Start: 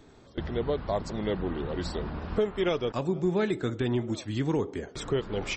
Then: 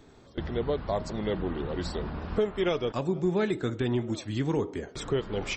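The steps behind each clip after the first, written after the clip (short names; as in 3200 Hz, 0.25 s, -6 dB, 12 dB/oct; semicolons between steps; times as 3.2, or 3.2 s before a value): de-hum 313.3 Hz, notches 14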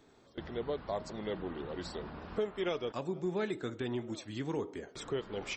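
low shelf 140 Hz -10.5 dB; gain -6 dB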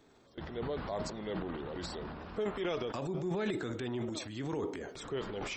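transient shaper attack -2 dB, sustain +10 dB; gain -1 dB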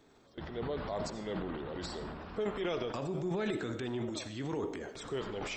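reverb RT60 0.45 s, pre-delay 40 ms, DRR 11.5 dB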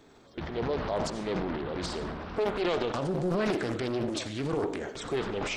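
Doppler distortion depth 0.78 ms; gain +6.5 dB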